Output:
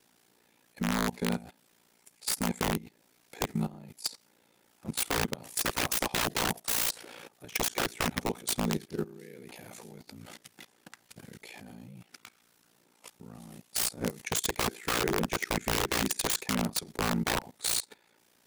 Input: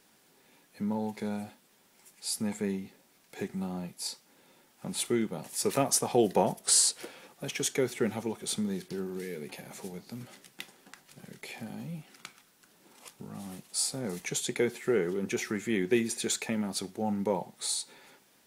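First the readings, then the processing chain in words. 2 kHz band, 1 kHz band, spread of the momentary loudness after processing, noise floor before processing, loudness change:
+5.5 dB, +2.5 dB, 20 LU, -65 dBFS, 0.0 dB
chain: wrapped overs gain 25 dB; ring modulator 29 Hz; level quantiser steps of 19 dB; gain +9 dB

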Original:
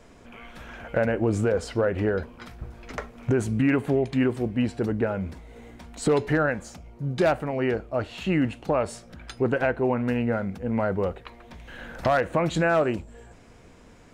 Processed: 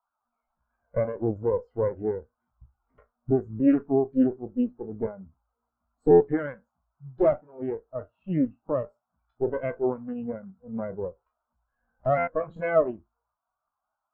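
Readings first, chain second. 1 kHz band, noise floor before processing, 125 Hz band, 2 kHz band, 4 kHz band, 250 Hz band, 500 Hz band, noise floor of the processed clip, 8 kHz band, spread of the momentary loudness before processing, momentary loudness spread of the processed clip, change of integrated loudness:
-4.5 dB, -51 dBFS, -7.5 dB, -11.0 dB, under -25 dB, -1.5 dB, -0.5 dB, -85 dBFS, under -35 dB, 19 LU, 14 LU, -1.5 dB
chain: spectral trails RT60 0.40 s; LPF 8300 Hz 12 dB/oct; band noise 590–1500 Hz -41 dBFS; added harmonics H 4 -7 dB, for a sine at -9.5 dBFS; stuck buffer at 6.1/12.17, samples 512, times 8; spectral expander 2.5:1; gain -1.5 dB

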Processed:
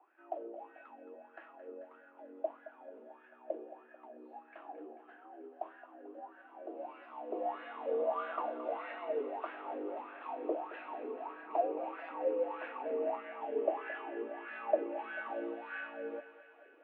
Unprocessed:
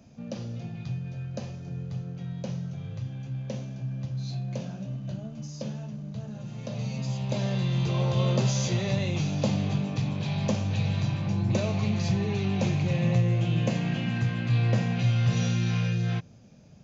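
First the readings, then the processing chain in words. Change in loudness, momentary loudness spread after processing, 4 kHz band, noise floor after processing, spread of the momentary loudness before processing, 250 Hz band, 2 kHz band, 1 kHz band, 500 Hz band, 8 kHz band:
-11.0 dB, 18 LU, under -20 dB, -61 dBFS, 12 LU, -18.0 dB, -7.0 dB, +1.0 dB, -1.0 dB, n/a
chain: mistuned SSB +110 Hz 210–2800 Hz; wah 1.6 Hz 440–1600 Hz, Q 8.5; thinning echo 0.22 s, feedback 74%, high-pass 600 Hz, level -12.5 dB; gain +8 dB

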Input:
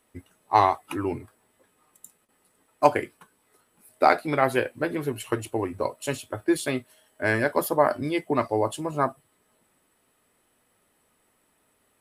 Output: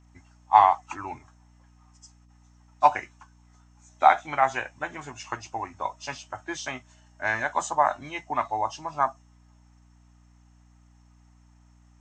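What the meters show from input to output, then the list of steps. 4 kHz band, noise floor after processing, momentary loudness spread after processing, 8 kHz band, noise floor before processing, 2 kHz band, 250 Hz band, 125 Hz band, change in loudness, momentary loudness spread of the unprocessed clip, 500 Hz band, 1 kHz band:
-2.5 dB, -57 dBFS, 17 LU, -2.0 dB, -69 dBFS, -0.5 dB, -14.0 dB, -10.5 dB, -0.5 dB, 10 LU, -7.5 dB, +3.0 dB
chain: nonlinear frequency compression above 2500 Hz 1.5:1; resonant low shelf 610 Hz -9 dB, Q 3; hum 60 Hz, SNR 28 dB; gain -2 dB

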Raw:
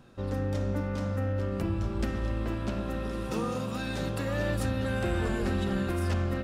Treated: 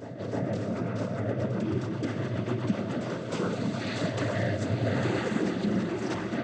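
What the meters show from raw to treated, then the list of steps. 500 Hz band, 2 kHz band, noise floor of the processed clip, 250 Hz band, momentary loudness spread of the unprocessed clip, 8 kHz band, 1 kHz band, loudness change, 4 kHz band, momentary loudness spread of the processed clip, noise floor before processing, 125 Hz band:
+2.0 dB, +1.0 dB, -36 dBFS, +2.5 dB, 4 LU, -0.5 dB, +0.5 dB, +1.0 dB, +1.5 dB, 4 LU, -34 dBFS, -0.5 dB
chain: rotary speaker horn 7.5 Hz, later 0.9 Hz, at 2.69; noise vocoder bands 16; reverse echo 0.311 s -9.5 dB; gain +4 dB

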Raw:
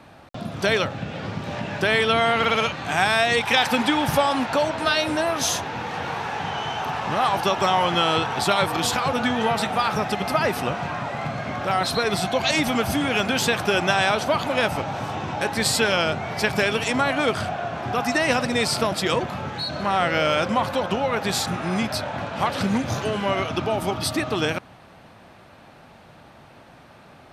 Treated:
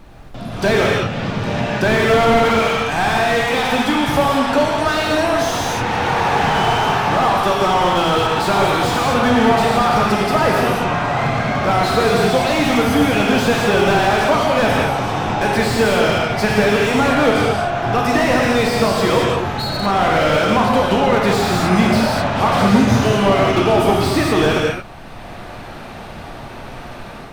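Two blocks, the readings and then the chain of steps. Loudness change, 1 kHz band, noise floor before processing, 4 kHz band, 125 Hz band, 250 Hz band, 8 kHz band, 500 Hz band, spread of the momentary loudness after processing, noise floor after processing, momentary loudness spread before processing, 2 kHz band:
+7.0 dB, +7.0 dB, -48 dBFS, +3.0 dB, +9.0 dB, +9.0 dB, +1.5 dB, +8.5 dB, 7 LU, -33 dBFS, 9 LU, +5.0 dB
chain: AGC gain up to 14 dB; added noise brown -39 dBFS; non-linear reverb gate 0.25 s flat, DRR 0 dB; slew limiter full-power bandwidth 320 Hz; gain -2 dB

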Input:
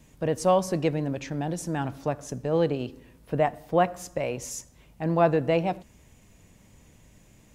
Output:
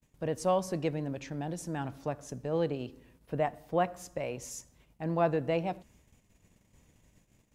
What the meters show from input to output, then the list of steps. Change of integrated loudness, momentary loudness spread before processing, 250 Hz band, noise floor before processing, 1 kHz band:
-6.5 dB, 11 LU, -6.5 dB, -57 dBFS, -6.5 dB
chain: gate -54 dBFS, range -29 dB; gain -6.5 dB

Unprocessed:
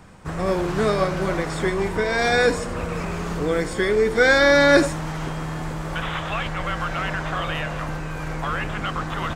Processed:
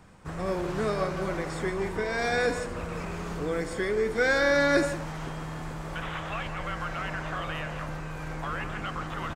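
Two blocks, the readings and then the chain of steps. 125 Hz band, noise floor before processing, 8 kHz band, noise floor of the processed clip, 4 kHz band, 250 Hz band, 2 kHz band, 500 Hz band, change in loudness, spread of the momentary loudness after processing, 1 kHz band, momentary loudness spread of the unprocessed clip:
-7.5 dB, -30 dBFS, -7.5 dB, -37 dBFS, -9.5 dB, -7.5 dB, -7.5 dB, -7.5 dB, -7.5 dB, 13 LU, -7.5 dB, 14 LU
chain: dynamic EQ 3500 Hz, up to -4 dB, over -44 dBFS, Q 4.4; in parallel at -12 dB: soft clip -19 dBFS, distortion -8 dB; on the sum: speakerphone echo 0.17 s, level -10 dB; gain -9 dB

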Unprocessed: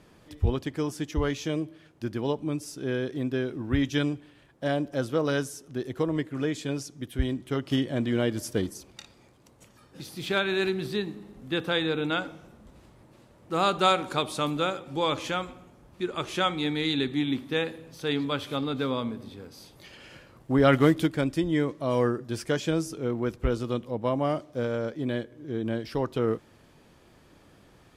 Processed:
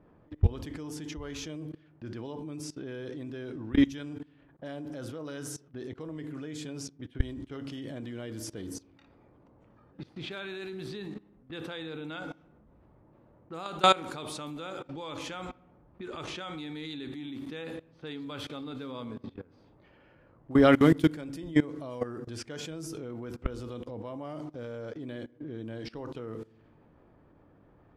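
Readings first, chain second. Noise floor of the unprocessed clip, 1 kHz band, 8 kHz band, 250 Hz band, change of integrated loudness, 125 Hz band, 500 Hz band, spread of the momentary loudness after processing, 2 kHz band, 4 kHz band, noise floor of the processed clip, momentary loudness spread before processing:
-57 dBFS, -4.5 dB, -3.5 dB, -3.5 dB, -4.5 dB, -5.0 dB, -6.5 dB, 17 LU, -6.5 dB, -6.5 dB, -61 dBFS, 10 LU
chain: FDN reverb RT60 0.63 s, low-frequency decay 1.55×, high-frequency decay 0.55×, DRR 13.5 dB; low-pass opened by the level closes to 1100 Hz, open at -25 dBFS; level quantiser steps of 21 dB; gain +3 dB

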